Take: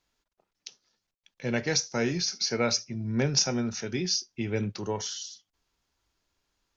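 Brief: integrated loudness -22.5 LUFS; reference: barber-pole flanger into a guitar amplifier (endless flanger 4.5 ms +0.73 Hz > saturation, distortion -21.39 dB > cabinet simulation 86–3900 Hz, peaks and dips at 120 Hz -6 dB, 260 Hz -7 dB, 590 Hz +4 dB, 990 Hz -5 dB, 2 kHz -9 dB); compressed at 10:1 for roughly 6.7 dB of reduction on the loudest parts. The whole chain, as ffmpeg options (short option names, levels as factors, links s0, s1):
-filter_complex "[0:a]acompressor=threshold=0.0447:ratio=10,asplit=2[s0][s1];[s1]adelay=4.5,afreqshift=0.73[s2];[s0][s2]amix=inputs=2:normalize=1,asoftclip=threshold=0.0562,highpass=86,equalizer=f=120:t=q:w=4:g=-6,equalizer=f=260:t=q:w=4:g=-7,equalizer=f=590:t=q:w=4:g=4,equalizer=f=990:t=q:w=4:g=-5,equalizer=f=2000:t=q:w=4:g=-9,lowpass=f=3900:w=0.5412,lowpass=f=3900:w=1.3066,volume=7.94"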